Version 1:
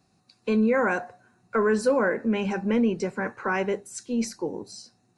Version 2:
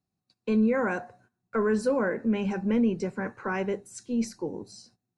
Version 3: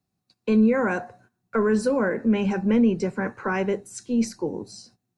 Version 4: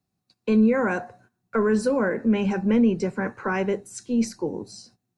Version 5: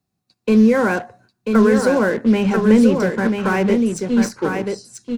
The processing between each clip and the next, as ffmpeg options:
-af "agate=range=0.141:threshold=0.00178:ratio=16:detection=peak,lowshelf=f=270:g=8,volume=0.531"
-filter_complex "[0:a]acrossover=split=320|3000[s0][s1][s2];[s1]acompressor=threshold=0.0501:ratio=6[s3];[s0][s3][s2]amix=inputs=3:normalize=0,volume=1.78"
-af anull
-filter_complex "[0:a]asplit=2[s0][s1];[s1]acrusher=bits=4:mix=0:aa=0.5,volume=0.501[s2];[s0][s2]amix=inputs=2:normalize=0,aecho=1:1:989:0.562,volume=1.33"

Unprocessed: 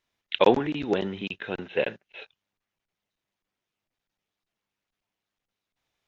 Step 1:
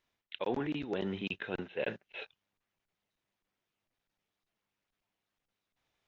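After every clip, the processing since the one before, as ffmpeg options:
-af "highshelf=f=5100:g=-5.5,areverse,acompressor=threshold=0.0251:ratio=6,areverse"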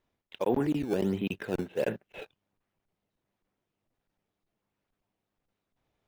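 -filter_complex "[0:a]tiltshelf=f=1200:g=5.5,asplit=2[s0][s1];[s1]acrusher=samples=13:mix=1:aa=0.000001:lfo=1:lforange=20.8:lforate=1.4,volume=0.355[s2];[s0][s2]amix=inputs=2:normalize=0"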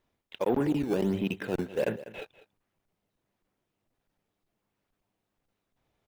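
-af "aecho=1:1:197:0.141,aeval=exprs='0.168*(cos(1*acos(clip(val(0)/0.168,-1,1)))-cos(1*PI/2))+0.00944*(cos(5*acos(clip(val(0)/0.168,-1,1)))-cos(5*PI/2))':c=same"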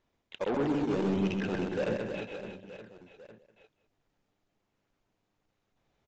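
-af "aresample=16000,asoftclip=type=tanh:threshold=0.0501,aresample=44100,aecho=1:1:130|312|566.8|923.5|1423:0.631|0.398|0.251|0.158|0.1"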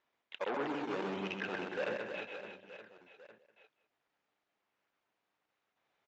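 -af "bandpass=f=1700:t=q:w=0.63:csg=0,volume=1.12"

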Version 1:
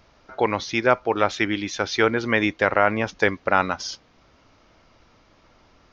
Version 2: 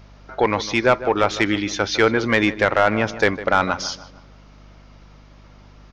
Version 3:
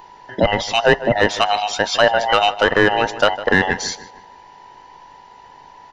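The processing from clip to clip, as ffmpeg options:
-filter_complex "[0:a]acontrast=85,aeval=exprs='val(0)+0.00794*(sin(2*PI*50*n/s)+sin(2*PI*2*50*n/s)/2+sin(2*PI*3*50*n/s)/3+sin(2*PI*4*50*n/s)/4+sin(2*PI*5*50*n/s)/5)':c=same,asplit=2[s0][s1];[s1]adelay=154,lowpass=f=2300:p=1,volume=0.2,asplit=2[s2][s3];[s3]adelay=154,lowpass=f=2300:p=1,volume=0.45,asplit=2[s4][s5];[s5]adelay=154,lowpass=f=2300:p=1,volume=0.45,asplit=2[s6][s7];[s7]adelay=154,lowpass=f=2300:p=1,volume=0.45[s8];[s0][s2][s4][s6][s8]amix=inputs=5:normalize=0,volume=0.708"
-af "afftfilt=real='real(if(between(b,1,1008),(2*floor((b-1)/48)+1)*48-b,b),0)':imag='imag(if(between(b,1,1008),(2*floor((b-1)/48)+1)*48-b,b),0)*if(between(b,1,1008),-1,1)':win_size=2048:overlap=0.75,volume=1.33"

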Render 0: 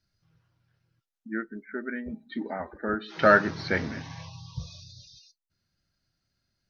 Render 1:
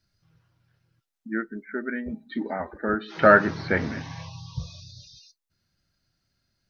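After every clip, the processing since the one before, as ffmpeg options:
-filter_complex "[0:a]acrossover=split=2600[s0][s1];[s1]acompressor=threshold=0.00398:ratio=4:attack=1:release=60[s2];[s0][s2]amix=inputs=2:normalize=0,volume=1.5"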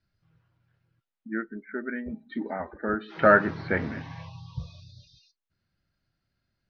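-af "lowpass=3200,volume=0.75"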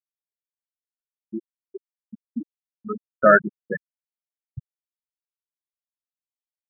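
-af "afftfilt=real='re*gte(hypot(re,im),0.316)':imag='im*gte(hypot(re,im),0.316)':win_size=1024:overlap=0.75,volume=1.68"

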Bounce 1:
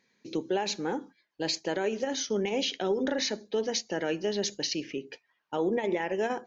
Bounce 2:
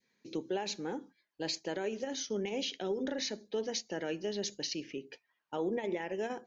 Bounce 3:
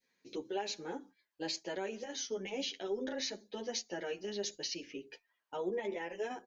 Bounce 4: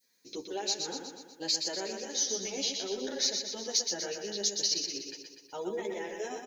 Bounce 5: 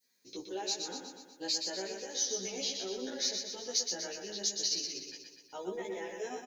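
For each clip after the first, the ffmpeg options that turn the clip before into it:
-af "adynamicequalizer=threshold=0.00562:dfrequency=1100:dqfactor=0.83:tfrequency=1100:tqfactor=0.83:attack=5:release=100:ratio=0.375:range=2.5:mode=cutabove:tftype=bell,volume=0.531"
-filter_complex "[0:a]equalizer=f=140:w=0.77:g=-7,asplit=2[s0][s1];[s1]adelay=9.3,afreqshift=1.3[s2];[s0][s2]amix=inputs=2:normalize=1,volume=1.19"
-af "aexciter=amount=2.6:drive=8.5:freq=4000,aecho=1:1:122|244|366|488|610|732|854:0.531|0.297|0.166|0.0932|0.0522|0.0292|0.0164"
-filter_complex "[0:a]asplit=2[s0][s1];[s1]adelay=16,volume=0.794[s2];[s0][s2]amix=inputs=2:normalize=0,volume=0.562"

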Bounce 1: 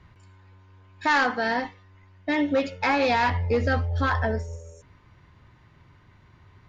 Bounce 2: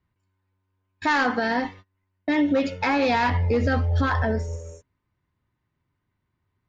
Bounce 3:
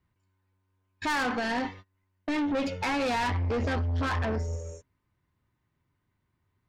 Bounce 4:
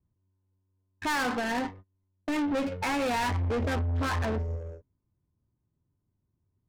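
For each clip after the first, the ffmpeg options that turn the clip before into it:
-af "agate=range=0.0447:threshold=0.00501:ratio=16:detection=peak,equalizer=f=260:t=o:w=1:g=4.5,alimiter=limit=0.119:level=0:latency=1:release=112,volume=1.68"
-af "asoftclip=type=tanh:threshold=0.0531"
-af "adynamicsmooth=sensitivity=6.5:basefreq=580"

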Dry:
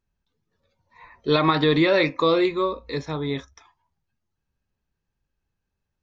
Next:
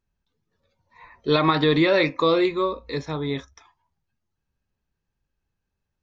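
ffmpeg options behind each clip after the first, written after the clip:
-af anull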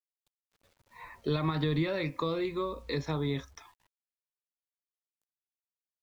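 -filter_complex "[0:a]acrossover=split=160[s0][s1];[s1]acompressor=threshold=0.0316:ratio=10[s2];[s0][s2]amix=inputs=2:normalize=0,acrusher=bits=10:mix=0:aa=0.000001"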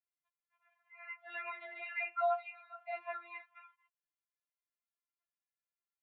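-af "highpass=f=590:t=q:w=0.5412,highpass=f=590:t=q:w=1.307,lowpass=f=2300:t=q:w=0.5176,lowpass=f=2300:t=q:w=0.7071,lowpass=f=2300:t=q:w=1.932,afreqshift=200,afftfilt=real='re*4*eq(mod(b,16),0)':imag='im*4*eq(mod(b,16),0)':win_size=2048:overlap=0.75,volume=1.33"

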